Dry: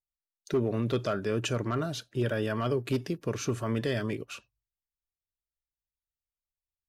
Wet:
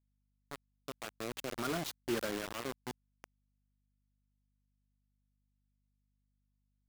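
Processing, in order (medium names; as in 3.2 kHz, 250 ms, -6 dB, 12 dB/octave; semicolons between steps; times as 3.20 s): Doppler pass-by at 1.92 s, 17 m/s, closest 3.6 m; high-pass 180 Hz 24 dB/octave; treble shelf 7.5 kHz -8.5 dB; bit crusher 6-bit; hum 50 Hz, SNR 35 dB; trim -1.5 dB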